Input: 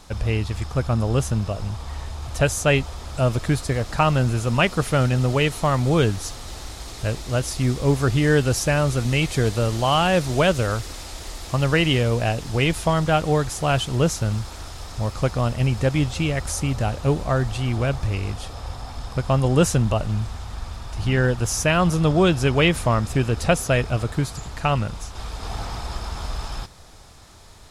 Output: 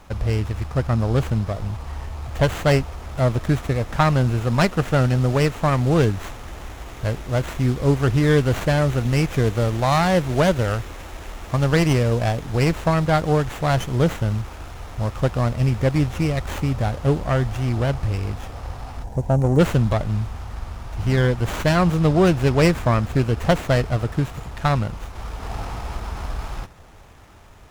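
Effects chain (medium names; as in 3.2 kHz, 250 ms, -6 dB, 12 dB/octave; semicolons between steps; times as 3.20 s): spectral selection erased 19.03–19.59 s, 1–5.5 kHz; sliding maximum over 9 samples; trim +1 dB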